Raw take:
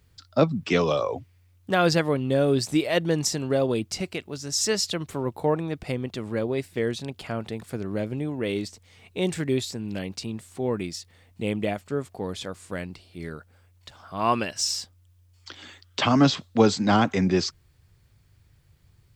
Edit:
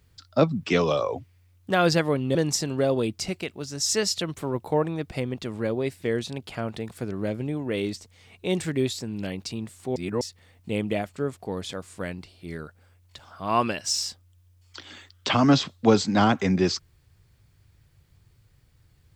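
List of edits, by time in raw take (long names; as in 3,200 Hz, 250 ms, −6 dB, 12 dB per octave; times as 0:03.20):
0:02.35–0:03.07: remove
0:10.68–0:10.93: reverse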